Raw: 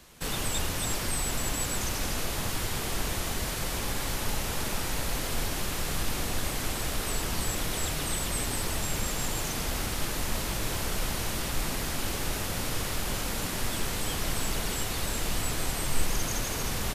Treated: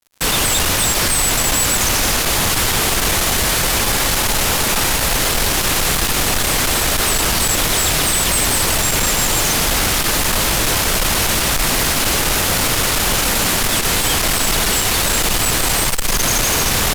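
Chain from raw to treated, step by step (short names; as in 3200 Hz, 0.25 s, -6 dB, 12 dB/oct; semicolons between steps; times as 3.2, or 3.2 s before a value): low shelf 490 Hz -6 dB; fuzz box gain 37 dB, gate -47 dBFS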